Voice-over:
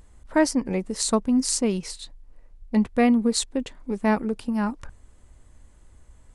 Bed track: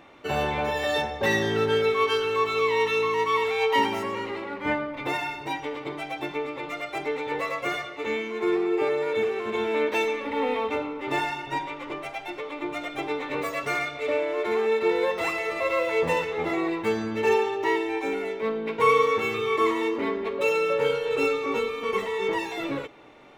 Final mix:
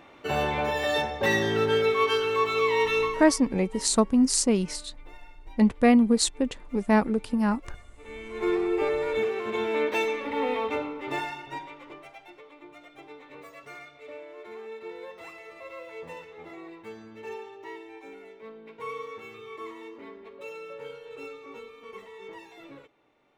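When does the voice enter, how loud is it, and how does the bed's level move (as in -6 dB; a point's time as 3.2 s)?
2.85 s, +0.5 dB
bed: 3.04 s -0.5 dB
3.42 s -23 dB
7.9 s -23 dB
8.44 s -1.5 dB
10.81 s -1.5 dB
12.66 s -17 dB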